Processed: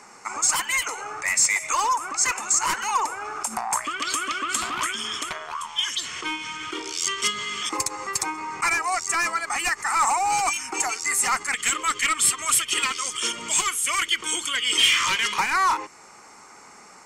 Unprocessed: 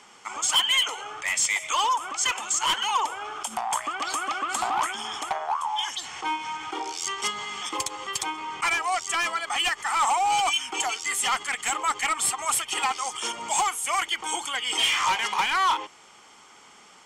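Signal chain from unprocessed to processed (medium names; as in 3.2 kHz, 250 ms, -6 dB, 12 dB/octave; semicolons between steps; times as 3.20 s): dynamic bell 710 Hz, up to -6 dB, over -39 dBFS, Q 1; LFO notch square 0.13 Hz 810–3200 Hz; trim +5.5 dB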